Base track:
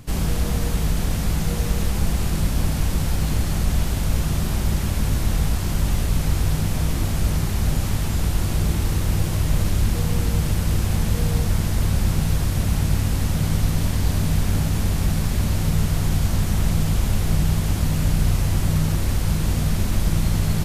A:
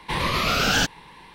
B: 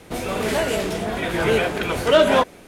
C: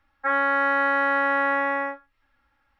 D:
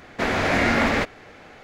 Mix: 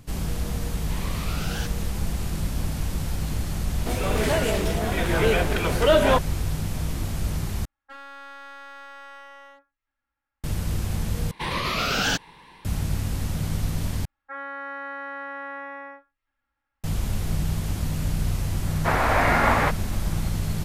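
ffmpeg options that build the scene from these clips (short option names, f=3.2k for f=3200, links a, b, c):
-filter_complex "[1:a]asplit=2[a][b];[3:a]asplit=2[c][d];[0:a]volume=-6dB[e];[2:a]acontrast=43[f];[c]aeval=exprs='clip(val(0),-1,0.0376)':c=same[g];[4:a]equalizer=f=1k:w=0.83:g=13.5[h];[e]asplit=4[i][j][k][l];[i]atrim=end=7.654[m];[g]atrim=end=2.79,asetpts=PTS-STARTPTS,volume=-17dB[n];[j]atrim=start=10.436:end=11.314[o];[b]atrim=end=1.34,asetpts=PTS-STARTPTS,volume=-3dB[p];[k]atrim=start=12.646:end=14.054[q];[d]atrim=end=2.79,asetpts=PTS-STARTPTS,volume=-13dB[r];[l]atrim=start=16.836[s];[a]atrim=end=1.34,asetpts=PTS-STARTPTS,volume=-14.5dB,afade=t=in:d=0.004:c=hsin,afade=t=out:st=1.336:d=0.004:c=hsin,adelay=810[t];[f]atrim=end=2.67,asetpts=PTS-STARTPTS,volume=-7.5dB,afade=t=in:d=0.004:c=hsin,afade=t=out:st=2.666:d=0.004:c=hsin,adelay=3750[u];[h]atrim=end=1.63,asetpts=PTS-STARTPTS,volume=-7.5dB,afade=t=in:d=0.004:c=hsin,afade=t=out:st=1.626:d=0.004:c=hsin,adelay=18660[v];[m][n]acrossfade=d=0.004:c1=hsin:c2=hsin[w];[w][o]acrossfade=d=0.004:c1=hsin:c2=hsin[x];[x][p]acrossfade=d=0.004:c1=hsin:c2=hsin[y];[y][q]acrossfade=d=0.004:c1=hsin:c2=hsin[z];[z][r]acrossfade=d=0.004:c1=hsin:c2=hsin[aa];[aa][s]acrossfade=d=0.004:c1=hsin:c2=hsin[ab];[ab][t][u][v]amix=inputs=4:normalize=0"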